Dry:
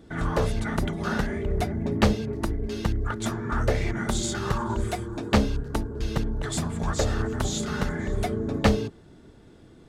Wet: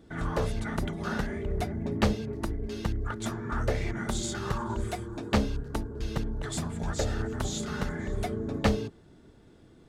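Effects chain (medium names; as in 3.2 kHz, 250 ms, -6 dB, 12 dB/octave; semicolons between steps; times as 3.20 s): 6.73–7.32 s: band-stop 1.1 kHz, Q 5.7; trim -4.5 dB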